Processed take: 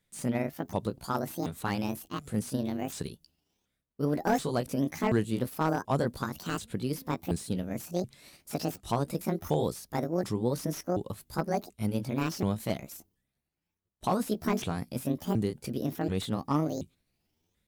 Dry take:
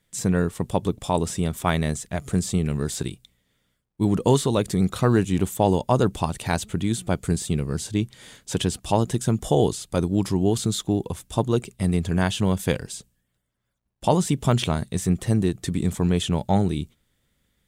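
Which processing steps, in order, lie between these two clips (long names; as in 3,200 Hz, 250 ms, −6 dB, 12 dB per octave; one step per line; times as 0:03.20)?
pitch shifter swept by a sawtooth +10.5 semitones, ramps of 731 ms
slew-rate limiting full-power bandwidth 190 Hz
level −7 dB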